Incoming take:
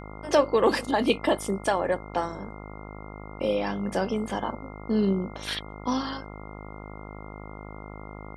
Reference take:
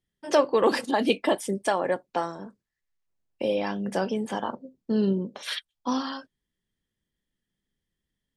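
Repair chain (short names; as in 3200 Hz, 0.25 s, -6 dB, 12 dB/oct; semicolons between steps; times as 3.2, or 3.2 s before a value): de-hum 51.9 Hz, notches 27; notch 2100 Hz, Q 30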